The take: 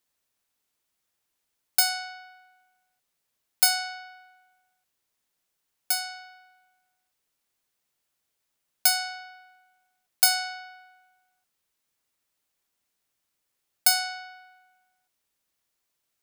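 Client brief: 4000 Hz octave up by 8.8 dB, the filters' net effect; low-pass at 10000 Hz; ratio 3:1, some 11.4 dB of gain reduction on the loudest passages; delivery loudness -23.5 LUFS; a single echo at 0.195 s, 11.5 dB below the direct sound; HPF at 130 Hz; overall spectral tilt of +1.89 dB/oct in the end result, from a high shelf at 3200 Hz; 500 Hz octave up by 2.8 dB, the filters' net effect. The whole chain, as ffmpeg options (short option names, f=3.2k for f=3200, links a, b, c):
-af "highpass=130,lowpass=10k,equalizer=f=500:t=o:g=5,highshelf=f=3.2k:g=8,equalizer=f=4k:t=o:g=4.5,acompressor=threshold=-27dB:ratio=3,aecho=1:1:195:0.266,volume=6dB"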